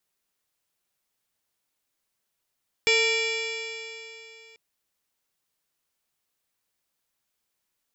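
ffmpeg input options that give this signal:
ffmpeg -f lavfi -i "aevalsrc='0.0668*pow(10,-3*t/3.08)*sin(2*PI*447.87*t)+0.015*pow(10,-3*t/3.08)*sin(2*PI*900.95*t)+0.00841*pow(10,-3*t/3.08)*sin(2*PI*1364.33*t)+0.0211*pow(10,-3*t/3.08)*sin(2*PI*1842.94*t)+0.106*pow(10,-3*t/3.08)*sin(2*PI*2341.42*t)+0.0282*pow(10,-3*t/3.08)*sin(2*PI*2864.09*t)+0.0422*pow(10,-3*t/3.08)*sin(2*PI*3414.91*t)+0.0188*pow(10,-3*t/3.08)*sin(2*PI*3997.45*t)+0.0237*pow(10,-3*t/3.08)*sin(2*PI*4614.89*t)+0.0376*pow(10,-3*t/3.08)*sin(2*PI*5270.05*t)+0.00944*pow(10,-3*t/3.08)*sin(2*PI*5965.4*t)+0.0133*pow(10,-3*t/3.08)*sin(2*PI*6703.07*t)+0.0211*pow(10,-3*t/3.08)*sin(2*PI*7484.92*t)':duration=1.69:sample_rate=44100" out.wav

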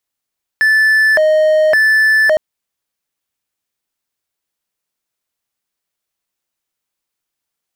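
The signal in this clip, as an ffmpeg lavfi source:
ffmpeg -f lavfi -i "aevalsrc='0.501*(1-4*abs(mod((1185.5*t+564.5/0.89*(0.5-abs(mod(0.89*t,1)-0.5)))+0.25,1)-0.5))':duration=1.76:sample_rate=44100" out.wav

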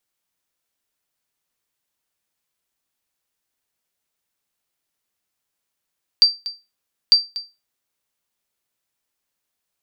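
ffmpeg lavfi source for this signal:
ffmpeg -f lavfi -i "aevalsrc='0.631*(sin(2*PI*4680*mod(t,0.9))*exp(-6.91*mod(t,0.9)/0.25)+0.15*sin(2*PI*4680*max(mod(t,0.9)-0.24,0))*exp(-6.91*max(mod(t,0.9)-0.24,0)/0.25))':duration=1.8:sample_rate=44100" out.wav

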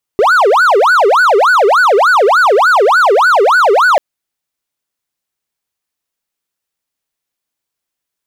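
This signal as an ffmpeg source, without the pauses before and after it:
ffmpeg -f lavfi -i "aevalsrc='0.668*(1-4*abs(mod((944.5*t-555.5/(2*PI*3.4)*sin(2*PI*3.4*t))+0.25,1)-0.5))':duration=3.79:sample_rate=44100" out.wav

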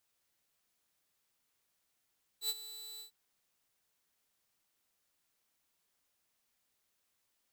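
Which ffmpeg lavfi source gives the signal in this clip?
ffmpeg -f lavfi -i "aevalsrc='0.0398*(2*mod(3970*t,1)-1)':duration=0.698:sample_rate=44100,afade=type=in:duration=0.083,afade=type=out:start_time=0.083:duration=0.041:silence=0.178,afade=type=out:start_time=0.59:duration=0.108" out.wav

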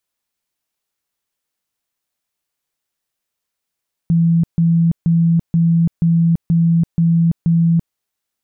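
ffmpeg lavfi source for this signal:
ffmpeg -f lavfi -i "aevalsrc='0.316*sin(2*PI*167*mod(t,0.48))*lt(mod(t,0.48),56/167)':duration=3.84:sample_rate=44100" out.wav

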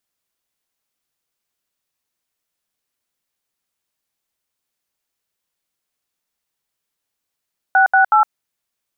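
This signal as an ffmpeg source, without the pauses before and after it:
ffmpeg -f lavfi -i "aevalsrc='0.266*clip(min(mod(t,0.185),0.112-mod(t,0.185))/0.002,0,1)*(eq(floor(t/0.185),0)*(sin(2*PI*770*mod(t,0.185))+sin(2*PI*1477*mod(t,0.185)))+eq(floor(t/0.185),1)*(sin(2*PI*770*mod(t,0.185))+sin(2*PI*1477*mod(t,0.185)))+eq(floor(t/0.185),2)*(sin(2*PI*852*mod(t,0.185))+sin(2*PI*1336*mod(t,0.185))))':duration=0.555:sample_rate=44100" out.wav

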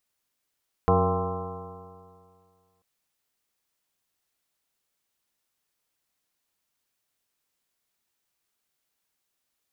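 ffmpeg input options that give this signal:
ffmpeg -f lavfi -i "aevalsrc='0.075*pow(10,-3*t/2.14)*sin(2*PI*89.26*t)+0.0596*pow(10,-3*t/2.14)*sin(2*PI*179.51*t)+0.0211*pow(10,-3*t/2.14)*sin(2*PI*271.71*t)+0.0299*pow(10,-3*t/2.14)*sin(2*PI*366.8*t)+0.0891*pow(10,-3*t/2.14)*sin(2*PI*465.65*t)+0.0119*pow(10,-3*t/2.14)*sin(2*PI*569.09*t)+0.0422*pow(10,-3*t/2.14)*sin(2*PI*677.88*t)+0.0562*pow(10,-3*t/2.14)*sin(2*PI*792.72*t)+0.0141*pow(10,-3*t/2.14)*sin(2*PI*914.2*t)+0.0631*pow(10,-3*t/2.14)*sin(2*PI*1042.89*t)+0.0158*pow(10,-3*t/2.14)*sin(2*PI*1179.26*t)+0.0211*pow(10,-3*t/2.14)*sin(2*PI*1323.74*t)':duration=1.94:sample_rate=44100" out.wav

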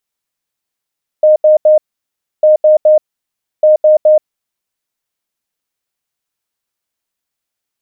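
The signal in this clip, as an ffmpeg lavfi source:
ffmpeg -f lavfi -i "aevalsrc='0.668*sin(2*PI*615*t)*clip(min(mod(mod(t,1.2),0.21),0.13-mod(mod(t,1.2),0.21))/0.005,0,1)*lt(mod(t,1.2),0.63)':duration=3.6:sample_rate=44100" out.wav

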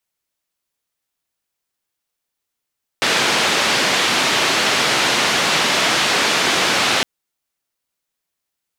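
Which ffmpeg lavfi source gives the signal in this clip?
ffmpeg -f lavfi -i "anoisesrc=color=white:duration=4.01:sample_rate=44100:seed=1,highpass=frequency=170,lowpass=frequency=3900,volume=-4.8dB" out.wav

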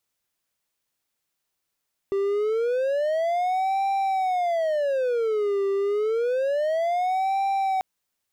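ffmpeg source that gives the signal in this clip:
ffmpeg -f lavfi -i "aevalsrc='0.112*(1-4*abs(mod((589*t-195/(2*PI*0.28)*sin(2*PI*0.28*t))+0.25,1)-0.5))':duration=5.69:sample_rate=44100" out.wav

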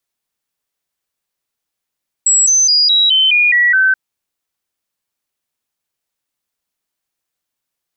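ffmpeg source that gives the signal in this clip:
ffmpeg -f lavfi -i "aevalsrc='0.398*clip(min(mod(t,0.21),0.21-mod(t,0.21))/0.005,0,1)*sin(2*PI*7740*pow(2,-floor(t/0.21)/3)*mod(t,0.21))':duration=1.68:sample_rate=44100" out.wav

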